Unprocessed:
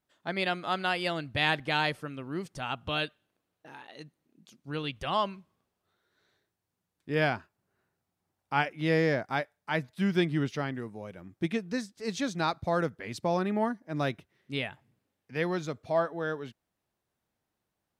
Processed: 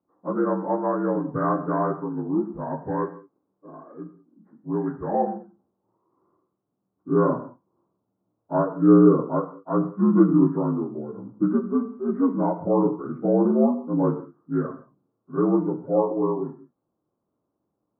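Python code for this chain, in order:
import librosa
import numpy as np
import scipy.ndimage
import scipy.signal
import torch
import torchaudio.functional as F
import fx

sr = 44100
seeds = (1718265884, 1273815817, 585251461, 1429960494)

y = fx.partial_stretch(x, sr, pct=78)
y = scipy.signal.sosfilt(scipy.signal.butter(8, 1300.0, 'lowpass', fs=sr, output='sos'), y)
y = fx.peak_eq(y, sr, hz=290.0, db=10.0, octaves=0.99)
y = fx.rev_gated(y, sr, seeds[0], gate_ms=220, shape='falling', drr_db=6.5)
y = F.gain(torch.from_numpy(y), 4.0).numpy()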